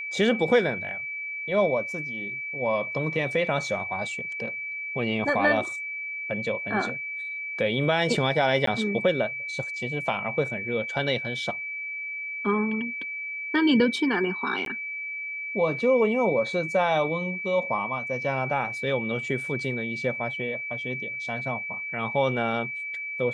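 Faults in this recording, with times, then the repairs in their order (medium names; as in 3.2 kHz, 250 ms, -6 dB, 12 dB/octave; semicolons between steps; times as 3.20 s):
whine 2.3 kHz -31 dBFS
8.66–8.67 s: dropout 13 ms
14.65–14.66 s: dropout 12 ms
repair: band-stop 2.3 kHz, Q 30; interpolate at 8.66 s, 13 ms; interpolate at 14.65 s, 12 ms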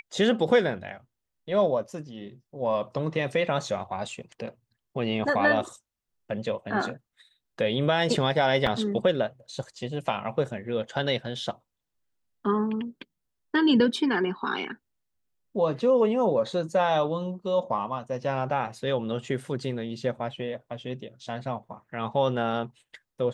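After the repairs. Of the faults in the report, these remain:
nothing left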